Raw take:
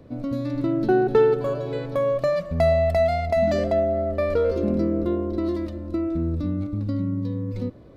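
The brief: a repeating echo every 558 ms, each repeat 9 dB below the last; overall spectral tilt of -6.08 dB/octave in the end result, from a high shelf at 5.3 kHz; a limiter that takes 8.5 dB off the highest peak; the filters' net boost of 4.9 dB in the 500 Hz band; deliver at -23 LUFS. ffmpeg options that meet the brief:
-af "equalizer=f=500:t=o:g=6.5,highshelf=f=5300:g=4.5,alimiter=limit=0.266:level=0:latency=1,aecho=1:1:558|1116|1674|2232:0.355|0.124|0.0435|0.0152,volume=0.75"

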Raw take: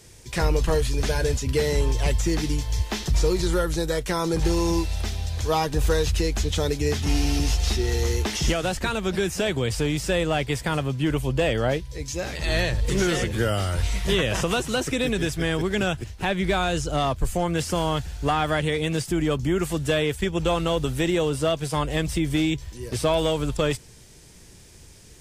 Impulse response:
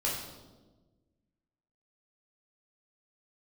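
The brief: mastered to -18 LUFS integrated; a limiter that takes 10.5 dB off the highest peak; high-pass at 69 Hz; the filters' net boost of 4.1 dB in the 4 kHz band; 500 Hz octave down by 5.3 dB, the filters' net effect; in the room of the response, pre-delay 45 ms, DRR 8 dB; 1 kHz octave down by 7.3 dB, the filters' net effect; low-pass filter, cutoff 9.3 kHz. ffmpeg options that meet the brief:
-filter_complex "[0:a]highpass=69,lowpass=9300,equalizer=f=500:t=o:g=-4.5,equalizer=f=1000:t=o:g=-9,equalizer=f=4000:t=o:g=6,alimiter=limit=0.0841:level=0:latency=1,asplit=2[s0][s1];[1:a]atrim=start_sample=2205,adelay=45[s2];[s1][s2]afir=irnorm=-1:irlink=0,volume=0.188[s3];[s0][s3]amix=inputs=2:normalize=0,volume=3.98"

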